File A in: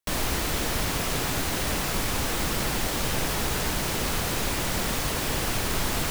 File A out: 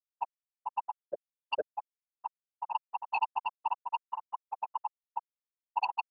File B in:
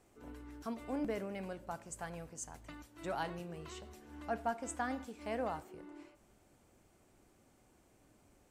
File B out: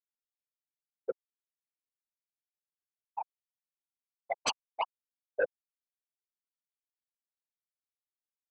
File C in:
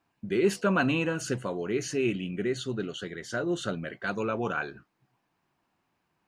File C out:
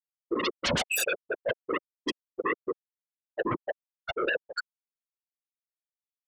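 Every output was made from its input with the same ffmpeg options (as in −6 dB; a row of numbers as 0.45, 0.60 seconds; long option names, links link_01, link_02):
-filter_complex "[0:a]asplit=2[link_01][link_02];[link_02]asoftclip=type=tanh:threshold=-26dB,volume=-6dB[link_03];[link_01][link_03]amix=inputs=2:normalize=0,flanger=delay=3.1:depth=6.9:regen=-24:speed=0.68:shape=sinusoidal,highpass=220,equalizer=frequency=300:width_type=q:width=4:gain=-6,equalizer=frequency=510:width_type=q:width=4:gain=5,equalizer=frequency=900:width_type=q:width=4:gain=10,equalizer=frequency=1800:width_type=q:width=4:gain=-4,equalizer=frequency=2500:width_type=q:width=4:gain=9,lowpass=frequency=4000:width=0.5412,lowpass=frequency=4000:width=1.3066,afftfilt=real='re*gte(hypot(re,im),0.316)':imag='im*gte(hypot(re,im),0.316)':win_size=1024:overlap=0.75,aeval=exprs='0.119*sin(PI/2*6.31*val(0)/0.119)':channel_layout=same,afftfilt=real='hypot(re,im)*cos(2*PI*random(0))':imag='hypot(re,im)*sin(2*PI*random(1))':win_size=512:overlap=0.75,adynamicequalizer=threshold=0.00224:dfrequency=3100:dqfactor=4.9:tfrequency=3100:tqfactor=4.9:attack=5:release=100:ratio=0.375:range=2:mode=boostabove:tftype=bell"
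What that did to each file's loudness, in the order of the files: −11.5, +4.5, −2.0 LU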